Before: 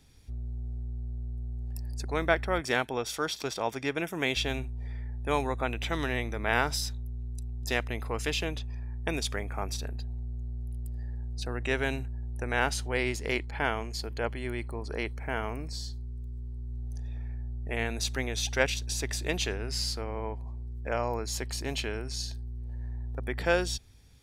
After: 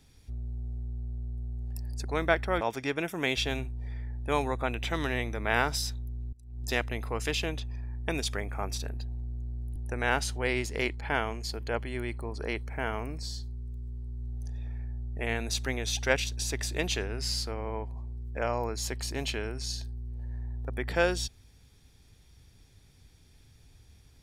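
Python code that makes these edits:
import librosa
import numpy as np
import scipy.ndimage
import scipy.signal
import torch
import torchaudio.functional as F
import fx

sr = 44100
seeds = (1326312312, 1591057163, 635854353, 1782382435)

y = fx.edit(x, sr, fx.cut(start_s=2.61, length_s=0.99),
    fx.fade_in_from(start_s=7.32, length_s=0.28, curve='qua', floor_db=-22.0),
    fx.cut(start_s=10.75, length_s=1.51), tone=tone)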